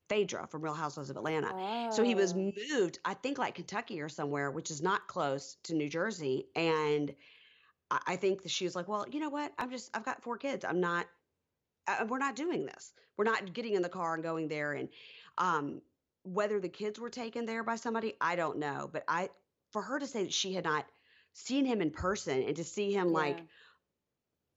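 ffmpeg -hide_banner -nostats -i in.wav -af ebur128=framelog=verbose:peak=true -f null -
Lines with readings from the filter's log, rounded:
Integrated loudness:
  I:         -34.9 LUFS
  Threshold: -45.3 LUFS
Loudness range:
  LRA:         2.7 LU
  Threshold: -55.4 LUFS
  LRA low:   -36.7 LUFS
  LRA high:  -34.0 LUFS
True peak:
  Peak:      -18.4 dBFS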